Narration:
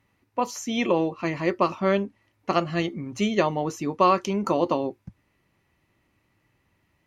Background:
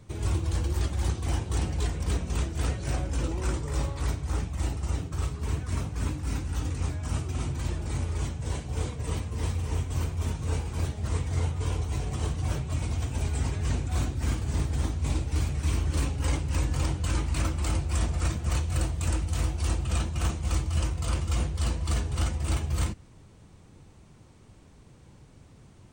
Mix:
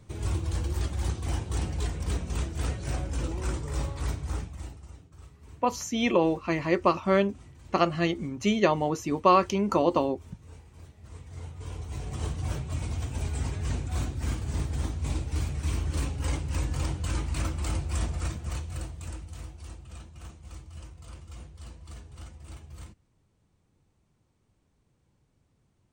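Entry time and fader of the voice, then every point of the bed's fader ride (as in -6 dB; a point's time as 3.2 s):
5.25 s, -0.5 dB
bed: 4.3 s -2 dB
4.99 s -19.5 dB
10.93 s -19.5 dB
12.22 s -2.5 dB
18.04 s -2.5 dB
19.83 s -17 dB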